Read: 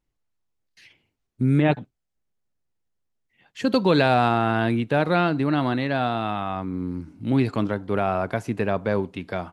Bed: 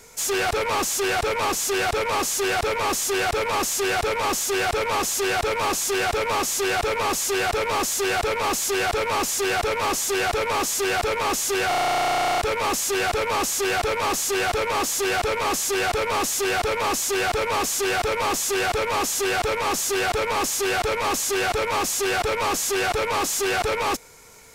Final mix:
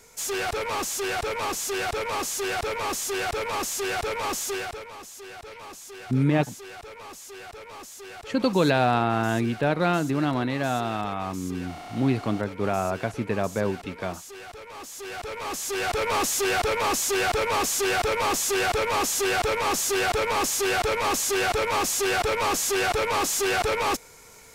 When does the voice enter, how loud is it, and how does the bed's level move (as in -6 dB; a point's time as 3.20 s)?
4.70 s, -2.5 dB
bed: 4.50 s -5 dB
4.93 s -18.5 dB
14.65 s -18.5 dB
16.10 s -1 dB